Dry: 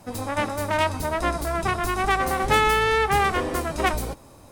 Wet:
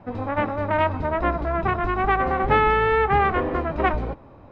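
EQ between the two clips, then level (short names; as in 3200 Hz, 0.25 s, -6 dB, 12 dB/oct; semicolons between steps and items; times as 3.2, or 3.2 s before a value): Bessel low-pass 1800 Hz, order 4; +2.5 dB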